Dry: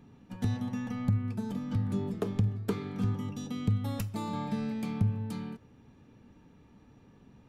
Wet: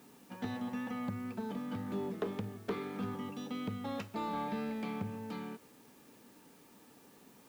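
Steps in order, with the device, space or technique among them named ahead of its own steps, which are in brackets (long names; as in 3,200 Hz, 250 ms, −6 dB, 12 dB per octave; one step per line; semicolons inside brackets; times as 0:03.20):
tape answering machine (band-pass filter 310–3,300 Hz; soft clipping −30 dBFS, distortion −15 dB; tape wow and flutter 16 cents; white noise bed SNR 25 dB)
level +2.5 dB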